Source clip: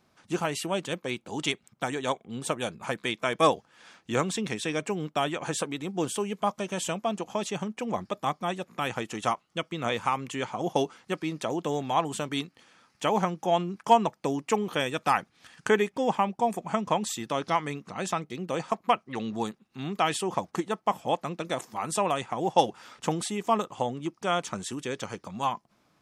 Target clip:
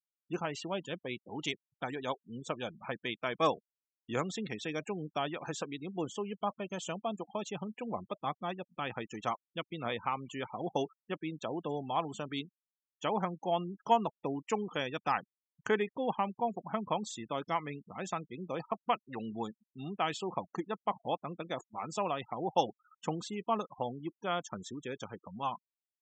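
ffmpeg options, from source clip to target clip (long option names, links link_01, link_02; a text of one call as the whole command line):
ffmpeg -i in.wav -af "afftfilt=real='re*gte(hypot(re,im),0.0178)':imag='im*gte(hypot(re,im),0.0178)':win_size=1024:overlap=0.75,aresample=16000,aresample=44100,volume=-7dB" out.wav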